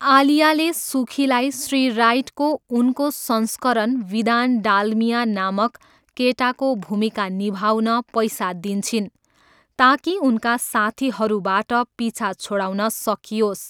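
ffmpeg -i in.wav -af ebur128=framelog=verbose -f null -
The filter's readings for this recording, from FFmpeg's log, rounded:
Integrated loudness:
  I:         -20.0 LUFS
  Threshold: -30.2 LUFS
Loudness range:
  LRA:         2.4 LU
  Threshold: -40.4 LUFS
  LRA low:   -21.7 LUFS
  LRA high:  -19.3 LUFS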